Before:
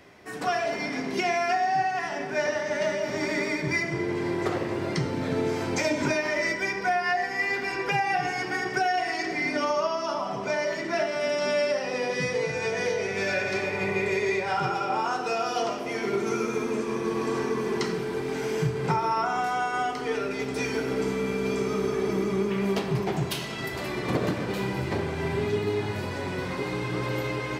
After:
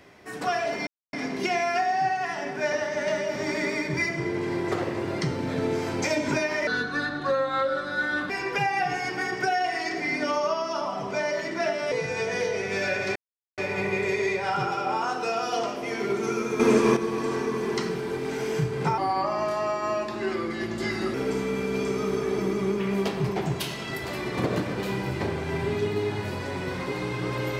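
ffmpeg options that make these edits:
ffmpeg -i in.wav -filter_complex "[0:a]asplit=10[link_01][link_02][link_03][link_04][link_05][link_06][link_07][link_08][link_09][link_10];[link_01]atrim=end=0.87,asetpts=PTS-STARTPTS,afade=type=out:start_time=0.866:duration=0.004:curve=hsin,apad=pad_dur=0.26[link_11];[link_02]atrim=start=0.87:end=6.414,asetpts=PTS-STARTPTS,afade=type=in:duration=0.004:curve=hsin[link_12];[link_03]atrim=start=6.41:end=7.63,asetpts=PTS-STARTPTS,asetrate=33075,aresample=44100[link_13];[link_04]atrim=start=7.626:end=11.252[link_14];[link_05]atrim=start=12.368:end=13.61,asetpts=PTS-STARTPTS,afade=type=out:start_time=1.238:duration=0.004:curve=hsin,apad=pad_dur=0.42[link_15];[link_06]atrim=start=13.61:end=16.632,asetpts=PTS-STARTPTS,afade=type=in:duration=0.004:curve=hsin[link_16];[link_07]atrim=start=16.628:end=17.002,asetpts=PTS-STARTPTS,volume=9.5dB[link_17];[link_08]atrim=start=16.998:end=19.014[link_18];[link_09]atrim=start=19.01:end=20.85,asetpts=PTS-STARTPTS,asetrate=37485,aresample=44100[link_19];[link_10]atrim=start=20.846[link_20];[link_11][link_12]concat=n=2:v=0:a=1[link_21];[link_21][link_13]acrossfade=duration=0.004:curve1=hsin:curve2=hsin[link_22];[link_22][link_14]acrossfade=duration=0.004:curve1=hsin:curve2=hsin[link_23];[link_15][link_16]concat=n=2:v=0:a=1[link_24];[link_23][link_24]acrossfade=duration=0.004:curve1=hsin:curve2=hsin[link_25];[link_25][link_17]acrossfade=duration=0.004:curve1=hsin:curve2=hsin[link_26];[link_26][link_18]acrossfade=duration=0.004:curve1=hsin:curve2=hsin[link_27];[link_27][link_19]acrossfade=duration=0.004:curve1=hsin:curve2=hsin[link_28];[link_28][link_20]acrossfade=duration=0.004:curve1=hsin:curve2=hsin" out.wav

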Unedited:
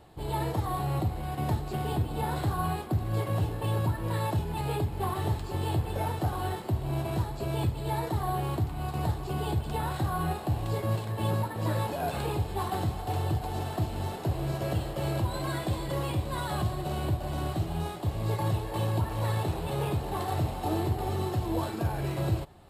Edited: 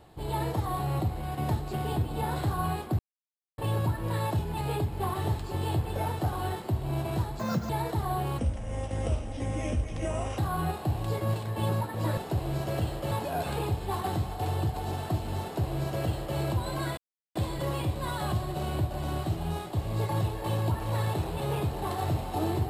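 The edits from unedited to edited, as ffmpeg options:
ffmpeg -i in.wav -filter_complex "[0:a]asplit=10[link_01][link_02][link_03][link_04][link_05][link_06][link_07][link_08][link_09][link_10];[link_01]atrim=end=2.99,asetpts=PTS-STARTPTS,afade=type=out:start_time=2.986:duration=0.004:curve=hsin[link_11];[link_02]atrim=start=2.99:end=3.58,asetpts=PTS-STARTPTS,volume=0[link_12];[link_03]atrim=start=3.58:end=7.394,asetpts=PTS-STARTPTS,afade=type=in:duration=0.004:curve=hsin[link_13];[link_04]atrim=start=7.39:end=7.87,asetpts=PTS-STARTPTS,asetrate=69678,aresample=44100,atrim=end_sample=13397,asetpts=PTS-STARTPTS[link_14];[link_05]atrim=start=7.866:end=8.564[link_15];[link_06]atrim=start=8.56:end=10,asetpts=PTS-STARTPTS,asetrate=31752,aresample=44100[link_16];[link_07]atrim=start=9.996:end=11.792[link_17];[link_08]atrim=start=14.108:end=15.052[link_18];[link_09]atrim=start=11.788:end=15.65,asetpts=PTS-STARTPTS,afade=type=out:start_time=3.858:duration=0.004:curve=hsin,apad=pad_dur=0.38[link_19];[link_10]atrim=start=15.65,asetpts=PTS-STARTPTS,afade=type=in:duration=0.004:curve=hsin[link_20];[link_11][link_12][link_13]concat=n=3:v=0:a=1[link_21];[link_21][link_14]acrossfade=duration=0.004:curve1=hsin:curve2=hsin[link_22];[link_22][link_15]acrossfade=duration=0.004:curve1=hsin:curve2=hsin[link_23];[link_23][link_16]acrossfade=duration=0.004:curve1=hsin:curve2=hsin[link_24];[link_24][link_17]acrossfade=duration=0.004:curve1=hsin:curve2=hsin[link_25];[link_25][link_18]acrossfade=duration=0.004:curve1=hsin:curve2=hsin[link_26];[link_19][link_20]concat=n=2:v=0:a=1[link_27];[link_26][link_27]acrossfade=duration=0.004:curve1=hsin:curve2=hsin" out.wav

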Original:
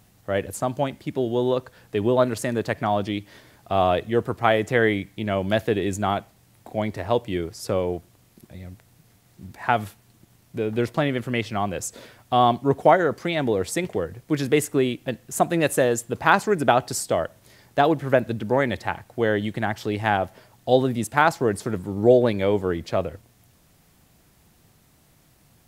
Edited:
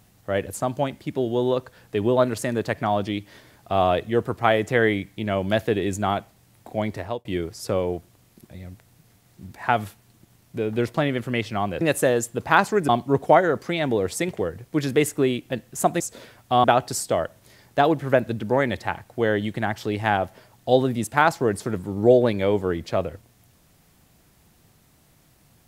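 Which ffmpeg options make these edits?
ffmpeg -i in.wav -filter_complex "[0:a]asplit=6[link_01][link_02][link_03][link_04][link_05][link_06];[link_01]atrim=end=7.25,asetpts=PTS-STARTPTS,afade=type=out:start_time=6.97:duration=0.28[link_07];[link_02]atrim=start=7.25:end=11.812,asetpts=PTS-STARTPTS,afade=type=in:duration=0.004:curve=hsin[link_08];[link_03]atrim=start=15.558:end=16.642[link_09];[link_04]atrim=start=12.448:end=15.562[link_10];[link_05]atrim=start=11.808:end=12.452[link_11];[link_06]atrim=start=16.638[link_12];[link_07][link_08]concat=n=2:v=0:a=1[link_13];[link_13][link_09]acrossfade=duration=0.004:curve1=hsin:curve2=hsin[link_14];[link_14][link_10]acrossfade=duration=0.004:curve1=hsin:curve2=hsin[link_15];[link_15][link_11]acrossfade=duration=0.004:curve1=hsin:curve2=hsin[link_16];[link_16][link_12]acrossfade=duration=0.004:curve1=hsin:curve2=hsin" out.wav

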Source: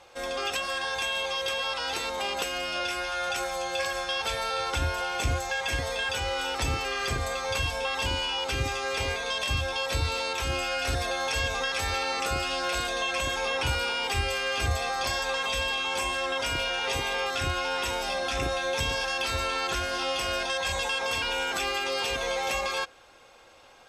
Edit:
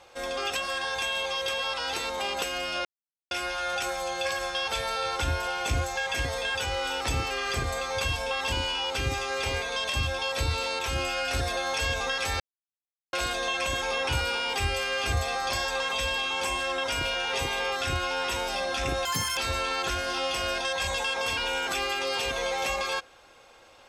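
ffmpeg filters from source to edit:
ffmpeg -i in.wav -filter_complex "[0:a]asplit=6[link_01][link_02][link_03][link_04][link_05][link_06];[link_01]atrim=end=2.85,asetpts=PTS-STARTPTS,afade=type=out:start_time=2.846:duration=0.004:curve=hsin,apad=pad_dur=0.46[link_07];[link_02]atrim=start=2.85:end=11.94,asetpts=PTS-STARTPTS,afade=type=in:duration=0.004:curve=hsin,afade=type=out:start_time=9.086:duration=0.004:curve=hsin[link_08];[link_03]atrim=start=11.94:end=12.67,asetpts=PTS-STARTPTS,volume=0[link_09];[link_04]atrim=start=12.67:end=18.594,asetpts=PTS-STARTPTS,afade=type=in:duration=0.004:curve=hsin[link_10];[link_05]atrim=start=18.59:end=19.22,asetpts=PTS-STARTPTS,asetrate=86436,aresample=44100[link_11];[link_06]atrim=start=19.216[link_12];[link_07][link_08][link_09][link_10]concat=n=4:v=0:a=1[link_13];[link_13][link_11]acrossfade=duration=0.004:curve1=hsin:curve2=hsin[link_14];[link_14][link_12]acrossfade=duration=0.004:curve1=hsin:curve2=hsin" out.wav

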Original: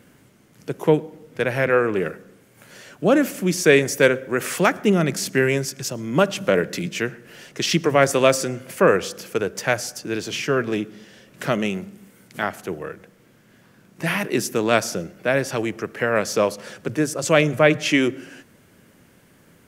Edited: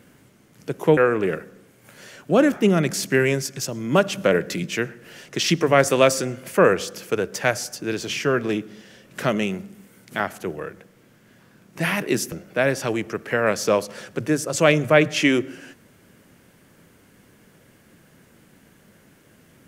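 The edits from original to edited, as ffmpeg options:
ffmpeg -i in.wav -filter_complex "[0:a]asplit=4[link_01][link_02][link_03][link_04];[link_01]atrim=end=0.972[link_05];[link_02]atrim=start=1.698:end=3.252[link_06];[link_03]atrim=start=4.748:end=14.552[link_07];[link_04]atrim=start=15.008[link_08];[link_05][link_06]acrossfade=duration=0.004:curve1=hsin:curve2=hsin[link_09];[link_09][link_07]acrossfade=duration=0.004:curve1=hsin:curve2=hsin[link_10];[link_10][link_08]acrossfade=duration=0.004:curve1=hsin:curve2=hsin" out.wav

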